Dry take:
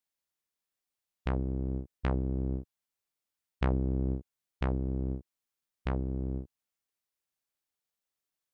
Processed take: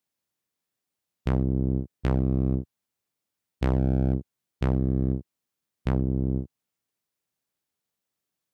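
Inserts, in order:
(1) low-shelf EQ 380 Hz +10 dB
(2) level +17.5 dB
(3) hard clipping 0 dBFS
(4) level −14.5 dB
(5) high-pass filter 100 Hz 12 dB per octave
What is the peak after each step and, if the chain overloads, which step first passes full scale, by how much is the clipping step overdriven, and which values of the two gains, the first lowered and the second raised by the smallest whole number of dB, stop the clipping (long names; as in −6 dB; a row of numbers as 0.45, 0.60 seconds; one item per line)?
−11.0, +6.5, 0.0, −14.5, −10.0 dBFS
step 2, 6.5 dB
step 2 +10.5 dB, step 4 −7.5 dB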